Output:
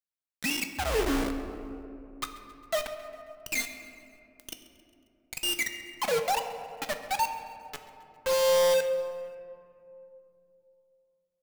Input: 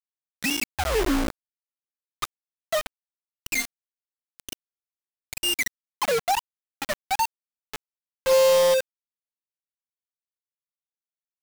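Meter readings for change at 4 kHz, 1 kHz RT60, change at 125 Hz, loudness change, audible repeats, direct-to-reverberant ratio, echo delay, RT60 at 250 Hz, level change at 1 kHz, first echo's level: -4.0 dB, 2.4 s, -3.5 dB, -5.0 dB, 2, 5.5 dB, 135 ms, 3.8 s, -3.5 dB, -19.5 dB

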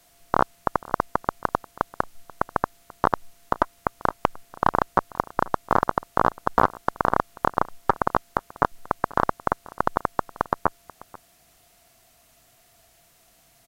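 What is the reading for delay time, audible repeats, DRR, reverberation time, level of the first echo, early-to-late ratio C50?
487 ms, 1, no reverb, no reverb, -21.5 dB, no reverb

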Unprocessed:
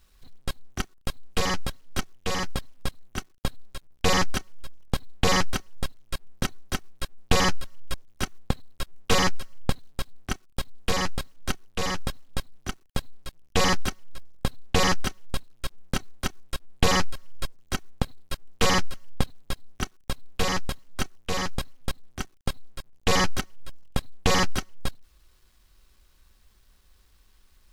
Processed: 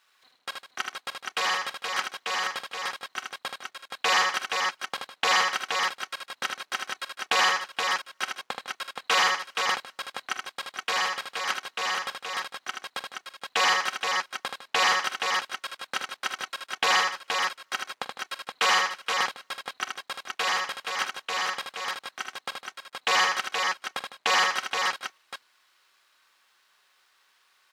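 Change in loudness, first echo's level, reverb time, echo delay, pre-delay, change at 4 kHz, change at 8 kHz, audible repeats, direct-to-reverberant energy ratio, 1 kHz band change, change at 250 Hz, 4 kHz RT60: +2.0 dB, -16.0 dB, no reverb, 43 ms, no reverb, +3.0 dB, -1.0 dB, 4, no reverb, +4.0 dB, -17.5 dB, no reverb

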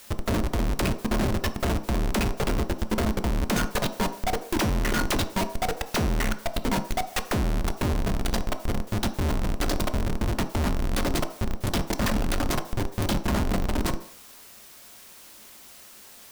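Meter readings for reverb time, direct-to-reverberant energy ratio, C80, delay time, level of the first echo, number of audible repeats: 0.60 s, 7.5 dB, 16.0 dB, no echo, no echo, no echo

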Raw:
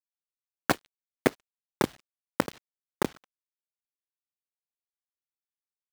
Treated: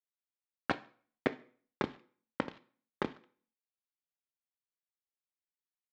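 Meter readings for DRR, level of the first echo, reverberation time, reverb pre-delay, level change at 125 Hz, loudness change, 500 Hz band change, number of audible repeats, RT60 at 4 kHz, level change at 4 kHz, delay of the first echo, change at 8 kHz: 11.0 dB, no echo, 0.50 s, 3 ms, -8.5 dB, -7.5 dB, -8.0 dB, no echo, 0.40 s, -9.0 dB, no echo, under -20 dB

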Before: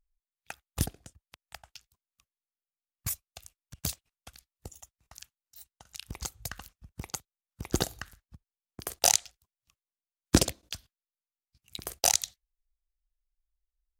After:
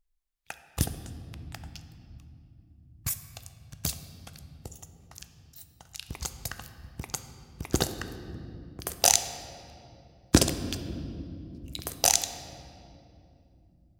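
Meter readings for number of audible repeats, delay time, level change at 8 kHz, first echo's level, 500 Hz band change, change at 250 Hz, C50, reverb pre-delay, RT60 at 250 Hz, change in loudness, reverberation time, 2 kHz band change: no echo, no echo, +2.0 dB, no echo, +3.0 dB, +3.0 dB, 10.5 dB, 6 ms, 5.5 s, +1.5 dB, 2.9 s, +2.5 dB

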